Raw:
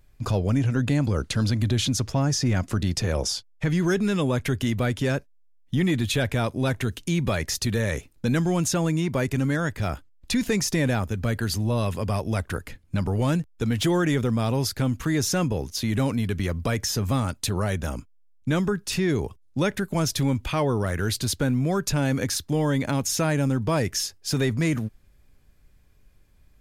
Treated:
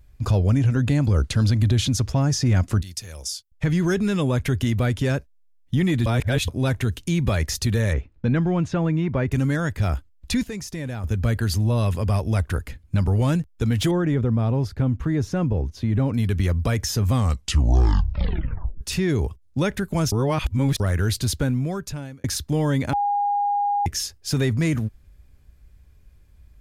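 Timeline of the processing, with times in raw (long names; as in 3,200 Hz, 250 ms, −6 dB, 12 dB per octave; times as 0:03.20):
0:02.81–0:03.52: first-order pre-emphasis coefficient 0.9
0:06.06–0:06.48: reverse
0:07.93–0:09.32: low-pass filter 2,400 Hz
0:10.43–0:11.04: clip gain −9.5 dB
0:13.91–0:16.14: low-pass filter 1,000 Hz 6 dB per octave
0:17.08: tape stop 1.73 s
0:20.12–0:20.80: reverse
0:21.35–0:22.24: fade out
0:22.93–0:23.86: beep over 815 Hz −19 dBFS
whole clip: parametric band 61 Hz +12 dB 1.5 octaves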